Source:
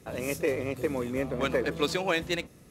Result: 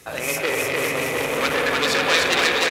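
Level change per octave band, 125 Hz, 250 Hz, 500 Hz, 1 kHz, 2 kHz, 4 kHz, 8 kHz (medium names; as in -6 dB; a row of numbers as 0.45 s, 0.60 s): +1.0 dB, +2.0 dB, +6.0 dB, +12.0 dB, +14.0 dB, +14.5 dB, +15.0 dB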